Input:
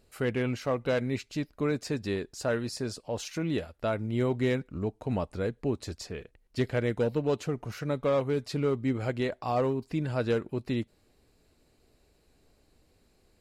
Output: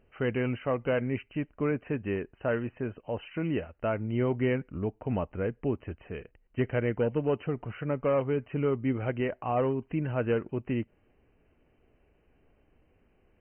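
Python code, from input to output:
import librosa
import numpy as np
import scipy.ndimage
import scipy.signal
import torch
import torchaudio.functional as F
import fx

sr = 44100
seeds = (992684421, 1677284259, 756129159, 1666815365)

y = fx.brickwall_lowpass(x, sr, high_hz=3100.0)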